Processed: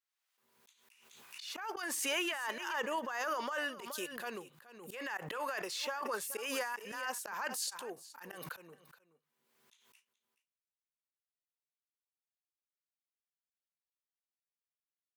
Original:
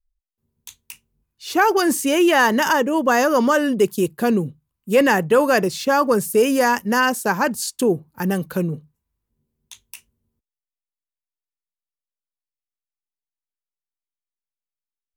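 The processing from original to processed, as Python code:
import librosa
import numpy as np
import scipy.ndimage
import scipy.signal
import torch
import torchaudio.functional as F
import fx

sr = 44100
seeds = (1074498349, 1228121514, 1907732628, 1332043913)

p1 = scipy.signal.sosfilt(scipy.signal.butter(2, 1100.0, 'highpass', fs=sr, output='sos'), x)
p2 = fx.high_shelf(p1, sr, hz=4800.0, db=-10.5)
p3 = fx.over_compress(p2, sr, threshold_db=-28.0, ratio=-1.0)
p4 = fx.auto_swell(p3, sr, attack_ms=169.0)
p5 = p4 + fx.echo_single(p4, sr, ms=424, db=-17.0, dry=0)
p6 = fx.pre_swell(p5, sr, db_per_s=45.0)
y = F.gain(torch.from_numpy(p6), -8.5).numpy()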